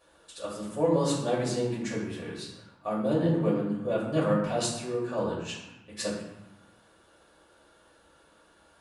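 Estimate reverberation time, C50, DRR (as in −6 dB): 1.0 s, 2.0 dB, −8.5 dB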